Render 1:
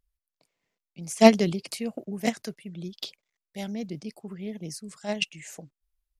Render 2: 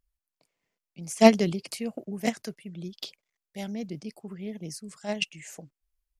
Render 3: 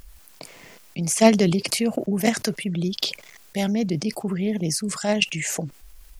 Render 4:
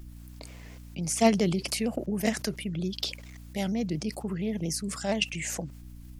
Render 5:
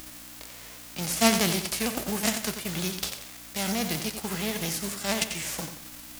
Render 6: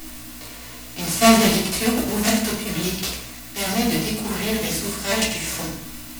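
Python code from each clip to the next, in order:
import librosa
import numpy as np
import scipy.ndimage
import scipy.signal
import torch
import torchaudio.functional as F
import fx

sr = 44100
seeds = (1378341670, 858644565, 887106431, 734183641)

y1 = fx.peak_eq(x, sr, hz=3800.0, db=-3.0, octaves=0.23)
y1 = F.gain(torch.from_numpy(y1), -1.0).numpy()
y2 = fx.env_flatten(y1, sr, amount_pct=50)
y3 = fx.add_hum(y2, sr, base_hz=60, snr_db=15)
y3 = fx.vibrato_shape(y3, sr, shape='saw_down', rate_hz=4.3, depth_cents=100.0)
y3 = F.gain(torch.from_numpy(y3), -6.5).numpy()
y4 = fx.envelope_flatten(y3, sr, power=0.3)
y4 = fx.echo_feedback(y4, sr, ms=90, feedback_pct=37, wet_db=-9)
y5 = fx.room_shoebox(y4, sr, seeds[0], volume_m3=220.0, walls='furnished', distance_m=3.4)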